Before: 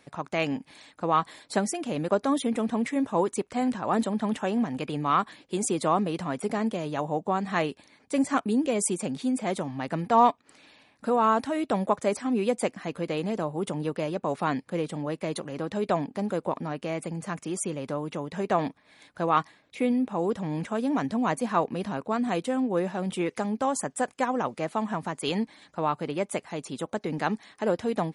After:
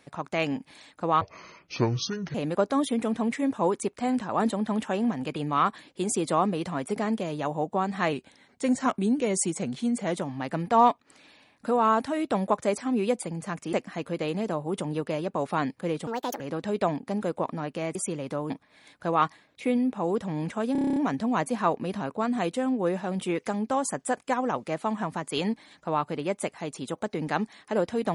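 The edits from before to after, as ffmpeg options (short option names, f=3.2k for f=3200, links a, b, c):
-filter_complex "[0:a]asplit=19[a][b][c][d][e][f][g][h][i][j][k][l][m][n][o][p][q][r][s];[a]atrim=end=1.214[t];[b]atrim=start=1.21:end=1.88,asetpts=PTS-STARTPTS,asetrate=26019,aresample=44100[u];[c]atrim=start=1.876:end=7.664[v];[d]atrim=start=7.66:end=9.56,asetpts=PTS-STARTPTS,asetrate=41013,aresample=44100[w];[e]atrim=start=9.556:end=12.622[x];[f]atrim=start=17.028:end=17.532[y];[g]atrim=start=12.618:end=14.964[z];[h]atrim=start=14.96:end=15.48,asetpts=PTS-STARTPTS,asetrate=68796,aresample=44100[aa];[i]atrim=start=15.476:end=17.032[ab];[j]atrim=start=17.528:end=18.082[ac];[k]atrim=start=18.648:end=20.902[ad];[l]atrim=start=20.868:end=20.902[ae];[m]atrim=start=20.868:end=20.902[af];[n]atrim=start=20.868:end=20.902[ag];[o]atrim=start=20.868:end=20.902[ah];[p]atrim=start=20.868:end=20.902[ai];[q]atrim=start=20.868:end=20.902[aj];[r]atrim=start=20.868:end=20.902[ak];[s]atrim=start=20.868[al];[t][u]acrossfade=d=0.004:c1=hsin:c2=hsin[am];[am][v]acrossfade=d=0.004:c1=hsin:c2=hsin[an];[an][w]acrossfade=d=0.004:c1=hsin:c2=hsin[ao];[ao][x]acrossfade=d=0.004:c1=hsin:c2=hsin[ap];[ap][y]acrossfade=d=0.004:c1=hsin:c2=hsin[aq];[aq][z]acrossfade=d=0.004:c1=hsin:c2=hsin[ar];[ar][aa]acrossfade=d=0.004:c1=hsin:c2=hsin[as];[as][ab]acrossfade=d=0.004:c1=hsin:c2=hsin[at];[at][ac]acrossfade=d=0.004:c1=hsin:c2=hsin[au];[au][ad]acrossfade=d=0.004:c1=hsin:c2=hsin[av];[av][ae]acrossfade=d=0.004:c1=hsin:c2=hsin[aw];[aw][af]acrossfade=d=0.004:c1=hsin:c2=hsin[ax];[ax][ag]acrossfade=d=0.004:c1=hsin:c2=hsin[ay];[ay][ah]acrossfade=d=0.004:c1=hsin:c2=hsin[az];[az][ai]acrossfade=d=0.004:c1=hsin:c2=hsin[ba];[ba][aj]acrossfade=d=0.004:c1=hsin:c2=hsin[bb];[bb][ak]acrossfade=d=0.004:c1=hsin:c2=hsin[bc];[bc][al]acrossfade=d=0.004:c1=hsin:c2=hsin"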